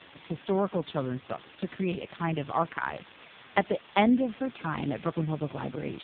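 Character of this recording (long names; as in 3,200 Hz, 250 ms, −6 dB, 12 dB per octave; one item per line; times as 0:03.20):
a quantiser's noise floor 6 bits, dither triangular
AMR narrowband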